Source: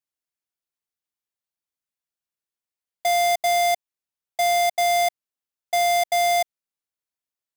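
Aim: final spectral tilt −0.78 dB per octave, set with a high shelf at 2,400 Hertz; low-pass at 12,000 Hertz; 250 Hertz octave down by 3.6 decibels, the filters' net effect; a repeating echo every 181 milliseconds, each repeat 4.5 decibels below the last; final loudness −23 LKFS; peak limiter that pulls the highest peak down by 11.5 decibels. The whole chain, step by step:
low-pass filter 12,000 Hz
parametric band 250 Hz −7 dB
high-shelf EQ 2,400 Hz +6 dB
brickwall limiter −22.5 dBFS
repeating echo 181 ms, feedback 60%, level −4.5 dB
level +7.5 dB

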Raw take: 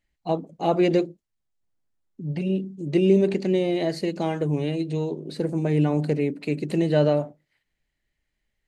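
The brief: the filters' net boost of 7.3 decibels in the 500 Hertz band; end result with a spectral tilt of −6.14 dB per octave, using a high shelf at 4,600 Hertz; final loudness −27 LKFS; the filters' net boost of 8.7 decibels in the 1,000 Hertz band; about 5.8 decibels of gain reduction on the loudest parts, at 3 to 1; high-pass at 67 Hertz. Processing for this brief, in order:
high-pass filter 67 Hz
parametric band 500 Hz +7.5 dB
parametric band 1,000 Hz +8.5 dB
high-shelf EQ 4,600 Hz +4 dB
downward compressor 3 to 1, threshold −16 dBFS
level −5 dB

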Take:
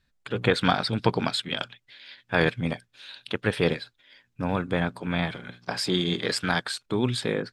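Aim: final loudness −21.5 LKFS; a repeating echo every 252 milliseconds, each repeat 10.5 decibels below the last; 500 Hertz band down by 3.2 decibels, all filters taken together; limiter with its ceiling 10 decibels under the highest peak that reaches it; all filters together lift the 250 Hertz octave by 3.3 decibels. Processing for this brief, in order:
parametric band 250 Hz +6 dB
parametric band 500 Hz −6 dB
brickwall limiter −15.5 dBFS
repeating echo 252 ms, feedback 30%, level −10.5 dB
level +7 dB

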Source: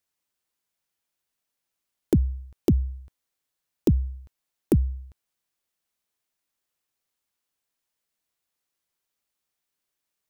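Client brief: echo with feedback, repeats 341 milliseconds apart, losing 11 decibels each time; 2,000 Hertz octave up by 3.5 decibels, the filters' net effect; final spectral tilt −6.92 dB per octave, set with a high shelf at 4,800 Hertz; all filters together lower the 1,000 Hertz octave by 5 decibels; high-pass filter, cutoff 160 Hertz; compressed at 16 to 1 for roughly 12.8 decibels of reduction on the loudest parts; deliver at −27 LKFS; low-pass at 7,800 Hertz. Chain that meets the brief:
high-pass filter 160 Hz
low-pass filter 7,800 Hz
parametric band 1,000 Hz −9 dB
parametric band 2,000 Hz +8.5 dB
high-shelf EQ 4,800 Hz −6.5 dB
downward compressor 16 to 1, threshold −29 dBFS
repeating echo 341 ms, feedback 28%, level −11 dB
level +14 dB

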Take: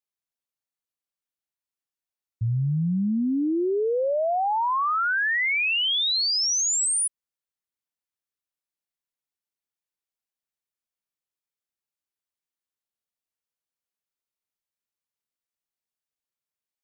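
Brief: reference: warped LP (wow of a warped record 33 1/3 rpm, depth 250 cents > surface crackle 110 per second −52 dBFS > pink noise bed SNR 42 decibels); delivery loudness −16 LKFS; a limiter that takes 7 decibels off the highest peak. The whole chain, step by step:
brickwall limiter −27.5 dBFS
wow of a warped record 33 1/3 rpm, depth 250 cents
surface crackle 110 per second −52 dBFS
pink noise bed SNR 42 dB
level +13.5 dB

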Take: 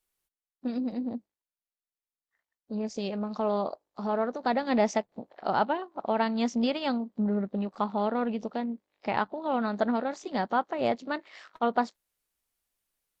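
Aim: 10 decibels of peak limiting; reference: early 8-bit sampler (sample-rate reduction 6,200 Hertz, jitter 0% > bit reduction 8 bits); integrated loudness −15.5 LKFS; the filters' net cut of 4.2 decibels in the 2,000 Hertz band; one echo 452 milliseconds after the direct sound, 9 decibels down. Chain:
parametric band 2,000 Hz −6 dB
brickwall limiter −22.5 dBFS
single-tap delay 452 ms −9 dB
sample-rate reduction 6,200 Hz, jitter 0%
bit reduction 8 bits
level +17 dB

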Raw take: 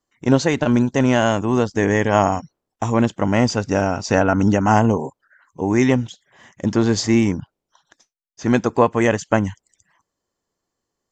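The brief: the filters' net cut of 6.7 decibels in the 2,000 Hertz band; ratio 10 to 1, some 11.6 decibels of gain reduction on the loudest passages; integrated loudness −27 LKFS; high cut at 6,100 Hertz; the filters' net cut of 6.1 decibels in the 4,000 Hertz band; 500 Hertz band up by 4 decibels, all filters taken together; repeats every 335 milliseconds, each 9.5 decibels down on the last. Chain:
low-pass filter 6,100 Hz
parametric band 500 Hz +5.5 dB
parametric band 2,000 Hz −8.5 dB
parametric band 4,000 Hz −4.5 dB
downward compressor 10 to 1, threshold −18 dBFS
repeating echo 335 ms, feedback 33%, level −9.5 dB
level −2.5 dB

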